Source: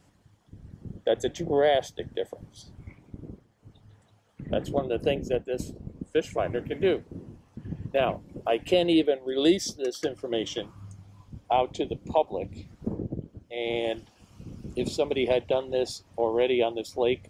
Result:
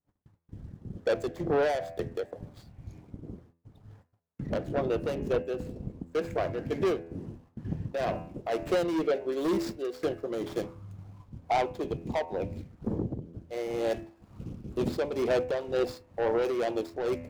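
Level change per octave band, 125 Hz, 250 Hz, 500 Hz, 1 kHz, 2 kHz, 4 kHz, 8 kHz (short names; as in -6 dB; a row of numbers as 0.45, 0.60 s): 0.0, -3.5, -3.0, -3.0, -3.0, -10.0, -9.0 dB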